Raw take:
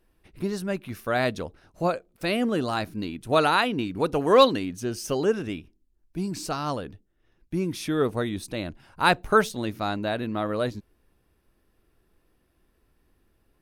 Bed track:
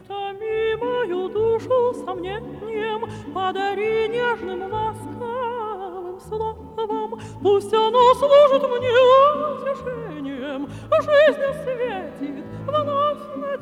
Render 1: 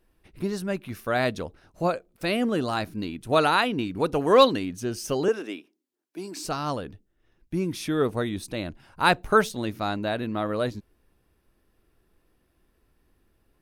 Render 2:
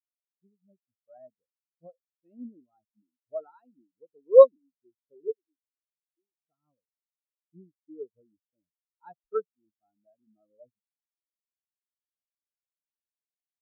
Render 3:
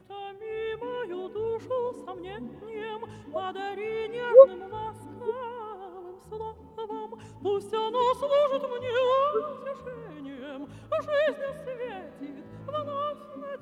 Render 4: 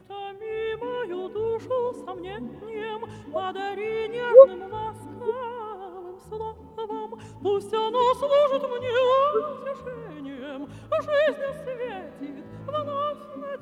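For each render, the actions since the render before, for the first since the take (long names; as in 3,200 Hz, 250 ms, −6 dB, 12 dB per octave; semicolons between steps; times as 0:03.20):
0:05.28–0:06.45: high-pass filter 280 Hz 24 dB per octave
automatic gain control gain up to 5 dB; every bin expanded away from the loudest bin 4 to 1
mix in bed track −11 dB
level +3.5 dB; brickwall limiter −1 dBFS, peak gain reduction 1.5 dB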